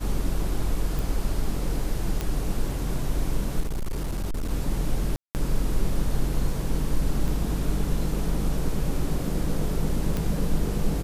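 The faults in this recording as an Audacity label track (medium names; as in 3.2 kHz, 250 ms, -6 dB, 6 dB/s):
0.990000	0.990000	pop
2.210000	2.210000	pop -13 dBFS
3.600000	4.500000	clipped -24 dBFS
5.160000	5.350000	dropout 189 ms
7.280000	7.280000	dropout 2.4 ms
10.170000	10.170000	pop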